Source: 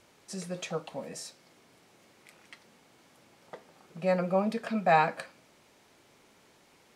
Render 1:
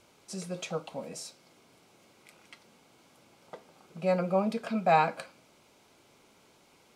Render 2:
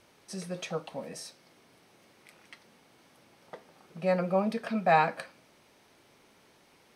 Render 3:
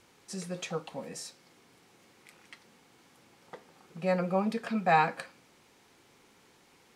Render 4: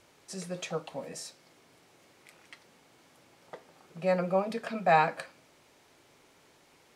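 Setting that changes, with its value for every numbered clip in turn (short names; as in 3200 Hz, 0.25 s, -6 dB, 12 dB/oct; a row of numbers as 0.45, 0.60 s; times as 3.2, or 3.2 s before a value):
notch, frequency: 1800, 7200, 620, 210 Hz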